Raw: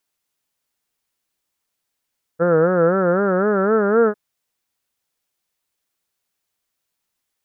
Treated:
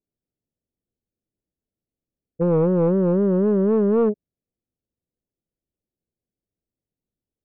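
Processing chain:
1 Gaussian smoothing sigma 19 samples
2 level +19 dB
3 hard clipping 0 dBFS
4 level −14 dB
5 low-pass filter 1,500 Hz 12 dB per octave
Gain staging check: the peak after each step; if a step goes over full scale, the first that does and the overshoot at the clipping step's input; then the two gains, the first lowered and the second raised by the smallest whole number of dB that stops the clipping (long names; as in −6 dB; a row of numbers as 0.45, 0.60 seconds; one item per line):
−13.0, +6.0, 0.0, −14.0, −13.5 dBFS
step 2, 6.0 dB
step 2 +13 dB, step 4 −8 dB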